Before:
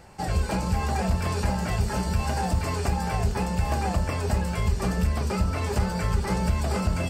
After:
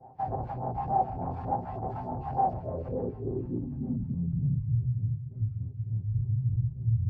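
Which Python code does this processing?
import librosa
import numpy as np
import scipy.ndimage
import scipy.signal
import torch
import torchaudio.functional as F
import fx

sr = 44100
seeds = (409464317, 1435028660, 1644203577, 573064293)

p1 = fx.lower_of_two(x, sr, delay_ms=7.7)
p2 = scipy.signal.sosfilt(scipy.signal.butter(2, 55.0, 'highpass', fs=sr, output='sos'), p1)
p3 = p2 + fx.echo_single(p2, sr, ms=141, db=-7.0, dry=0)
p4 = fx.phaser_stages(p3, sr, stages=2, low_hz=390.0, high_hz=4000.0, hz=3.4, feedback_pct=45)
p5 = fx.weighting(p4, sr, curve='D', at=(4.97, 6.08))
p6 = fx.volume_shaper(p5, sr, bpm=116, per_beat=1, depth_db=-15, release_ms=184.0, shape='slow start')
p7 = p5 + (p6 * 10.0 ** (1.5 / 20.0))
p8 = fx.doubler(p7, sr, ms=16.0, db=-13.0)
p9 = fx.over_compress(p8, sr, threshold_db=-19.0, ratio=-0.5)
p10 = 10.0 ** (-23.5 / 20.0) * np.tanh(p9 / 10.0 ** (-23.5 / 20.0))
p11 = fx.filter_sweep_lowpass(p10, sr, from_hz=770.0, to_hz=110.0, start_s=2.4, end_s=4.88, q=7.5)
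y = p11 * 10.0 ** (-9.0 / 20.0)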